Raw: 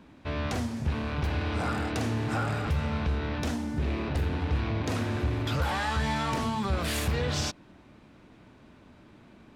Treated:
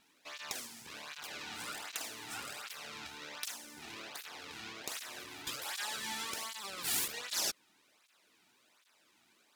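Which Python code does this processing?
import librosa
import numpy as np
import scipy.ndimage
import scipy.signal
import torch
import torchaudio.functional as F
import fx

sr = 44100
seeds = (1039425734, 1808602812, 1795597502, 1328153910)

y = np.diff(x, prepend=0.0)
y = np.maximum(y, 0.0)
y = fx.flanger_cancel(y, sr, hz=1.3, depth_ms=2.0)
y = F.gain(torch.from_numpy(y), 11.0).numpy()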